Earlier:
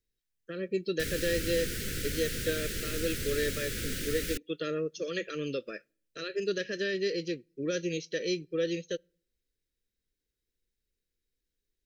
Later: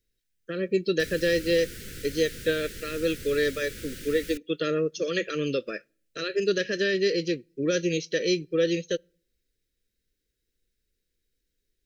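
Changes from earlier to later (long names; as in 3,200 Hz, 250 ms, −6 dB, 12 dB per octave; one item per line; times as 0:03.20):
speech +6.5 dB
background −5.5 dB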